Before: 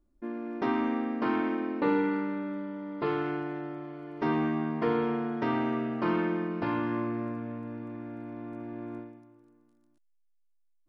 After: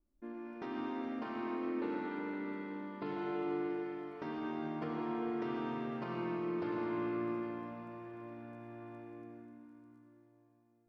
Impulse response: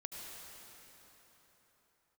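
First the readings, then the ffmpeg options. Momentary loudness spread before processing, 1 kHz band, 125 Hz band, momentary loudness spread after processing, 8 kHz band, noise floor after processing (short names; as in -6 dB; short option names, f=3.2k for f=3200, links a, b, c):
12 LU, -8.5 dB, -10.5 dB, 13 LU, n/a, -70 dBFS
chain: -filter_complex "[0:a]alimiter=limit=-23.5dB:level=0:latency=1:release=311[a];[1:a]atrim=start_sample=2205[b];[a][b]afir=irnorm=-1:irlink=0,adynamicequalizer=threshold=0.00158:dfrequency=3400:dqfactor=0.7:tfrequency=3400:tqfactor=0.7:attack=5:release=100:ratio=0.375:range=2.5:mode=boostabove:tftype=highshelf,volume=-4dB"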